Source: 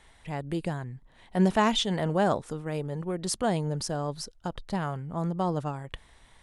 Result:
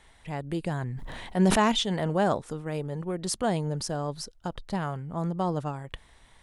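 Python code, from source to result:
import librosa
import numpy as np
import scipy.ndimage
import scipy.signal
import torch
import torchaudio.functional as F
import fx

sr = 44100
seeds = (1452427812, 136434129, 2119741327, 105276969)

y = fx.sustainer(x, sr, db_per_s=22.0, at=(0.68, 1.72))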